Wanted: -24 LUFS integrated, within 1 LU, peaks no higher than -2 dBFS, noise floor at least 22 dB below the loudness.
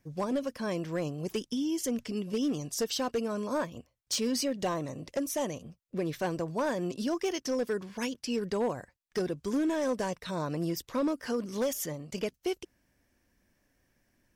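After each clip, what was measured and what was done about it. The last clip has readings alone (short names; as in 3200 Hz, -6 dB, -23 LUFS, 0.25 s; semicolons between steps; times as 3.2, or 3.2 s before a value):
clipped 1.1%; flat tops at -24.0 dBFS; loudness -33.0 LUFS; peak -24.0 dBFS; loudness target -24.0 LUFS
-> clip repair -24 dBFS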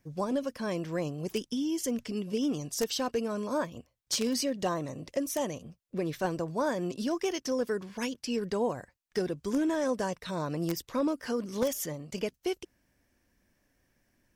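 clipped 0.0%; loudness -32.5 LUFS; peak -15.0 dBFS; loudness target -24.0 LUFS
-> gain +8.5 dB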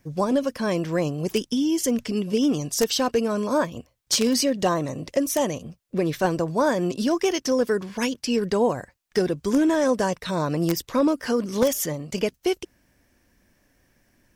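loudness -24.0 LUFS; peak -6.5 dBFS; noise floor -67 dBFS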